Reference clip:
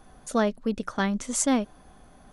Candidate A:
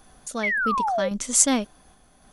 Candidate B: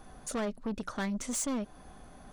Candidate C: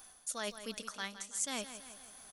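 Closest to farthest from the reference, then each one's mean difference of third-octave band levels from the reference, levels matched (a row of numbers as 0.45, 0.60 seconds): A, B, C; 4.5, 6.0, 11.5 decibels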